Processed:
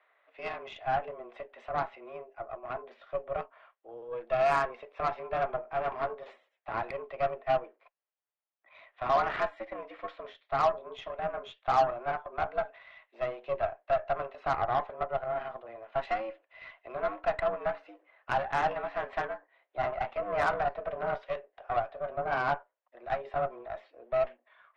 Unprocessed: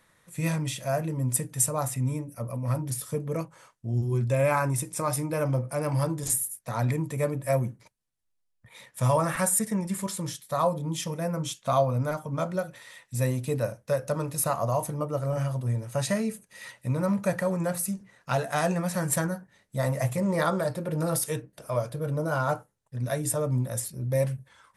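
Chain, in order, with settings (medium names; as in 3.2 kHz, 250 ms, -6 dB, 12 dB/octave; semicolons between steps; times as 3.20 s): mistuned SSB +110 Hz 390–3200 Hz; Chebyshev shaper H 8 -21 dB, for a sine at -12.5 dBFS; treble shelf 2.1 kHz -8 dB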